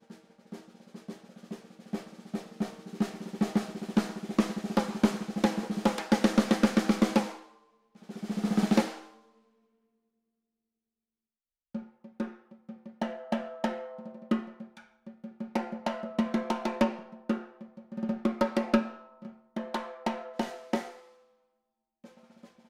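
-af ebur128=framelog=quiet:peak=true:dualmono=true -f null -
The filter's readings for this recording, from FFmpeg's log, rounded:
Integrated loudness:
  I:         -28.0 LUFS
  Threshold: -39.6 LUFS
Loudness range:
  LRA:        12.1 LU
  Threshold: -49.6 LUFS
  LRA low:   -37.3 LUFS
  LRA high:  -25.2 LUFS
True peak:
  Peak:      -11.1 dBFS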